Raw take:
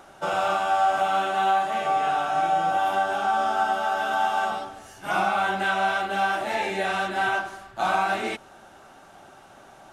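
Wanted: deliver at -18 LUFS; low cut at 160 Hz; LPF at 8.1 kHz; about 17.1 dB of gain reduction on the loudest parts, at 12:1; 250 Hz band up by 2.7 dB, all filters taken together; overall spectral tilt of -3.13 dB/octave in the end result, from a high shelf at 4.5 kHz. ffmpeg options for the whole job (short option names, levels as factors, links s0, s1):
-af "highpass=160,lowpass=8100,equalizer=f=250:t=o:g=5.5,highshelf=f=4500:g=5,acompressor=threshold=0.0158:ratio=12,volume=11.9"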